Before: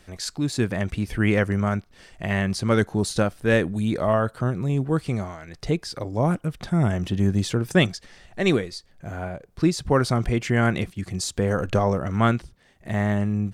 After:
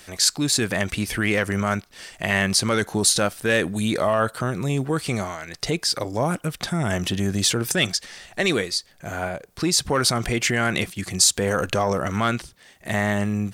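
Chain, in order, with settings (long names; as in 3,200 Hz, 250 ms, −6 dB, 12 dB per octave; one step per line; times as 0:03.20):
soft clipping −7.5 dBFS, distortion −25 dB
brickwall limiter −16.5 dBFS, peak gain reduction 8 dB
spectral tilt +2.5 dB per octave
level +6.5 dB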